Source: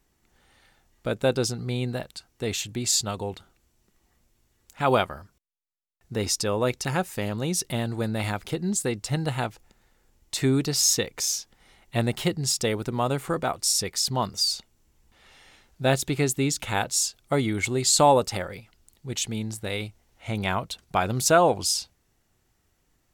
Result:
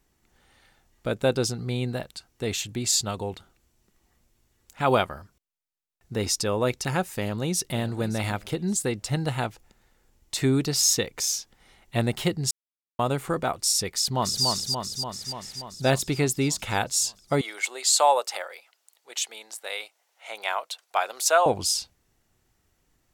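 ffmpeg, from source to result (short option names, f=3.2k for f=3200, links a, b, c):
-filter_complex "[0:a]asplit=2[a][b];[b]afade=t=in:st=7.15:d=0.01,afade=t=out:st=7.79:d=0.01,aecho=0:1:570|1140|1710:0.16788|0.0503641|0.0151092[c];[a][c]amix=inputs=2:normalize=0,asplit=2[d][e];[e]afade=t=in:st=13.91:d=0.01,afade=t=out:st=14.45:d=0.01,aecho=0:1:290|580|870|1160|1450|1740|2030|2320|2610|2900|3190|3480:0.668344|0.467841|0.327489|0.229242|0.160469|0.112329|0.07863|0.055041|0.0385287|0.0269701|0.0188791|0.0132153[f];[d][f]amix=inputs=2:normalize=0,asettb=1/sr,asplit=3[g][h][i];[g]atrim=end=17.414[j];[h]atrim=start=17.41:end=21.46,asetpts=PTS-STARTPTS,afade=t=in:d=0.004:c=qsin,afade=t=out:st=4.046:d=0.004:c=qsin,highpass=f=570:w=0.5412,highpass=f=570:w=1.3066[k];[i]atrim=start=21.456[l];[j][k]acrossfade=d=0.004:c1=hsin:c2=qsin[m];[m][l]acrossfade=d=0.004:c1=qsin:c2=hsin,asplit=3[n][o][p];[n]atrim=end=12.51,asetpts=PTS-STARTPTS,afade=t=out:st=12.506:d=0.004:c=hsin[q];[o]atrim=start=12.51:end=12.99,asetpts=PTS-STARTPTS,volume=0[r];[p]atrim=start=12.99,asetpts=PTS-STARTPTS,afade=t=in:d=0.004:c=hsin[s];[q][r][s]concat=n=3:v=0:a=1"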